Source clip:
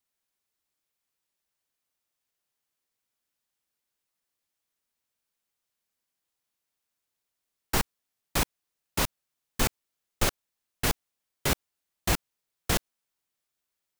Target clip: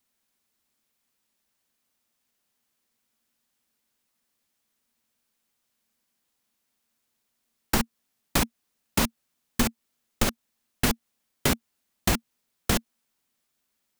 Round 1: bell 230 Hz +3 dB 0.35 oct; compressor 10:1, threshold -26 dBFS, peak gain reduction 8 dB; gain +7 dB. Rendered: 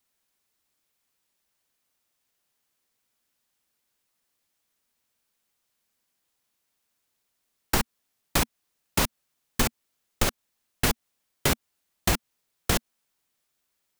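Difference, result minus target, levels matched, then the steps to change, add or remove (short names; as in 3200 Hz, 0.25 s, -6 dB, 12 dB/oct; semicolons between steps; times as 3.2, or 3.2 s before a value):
250 Hz band -3.5 dB
change: bell 230 Hz +11.5 dB 0.35 oct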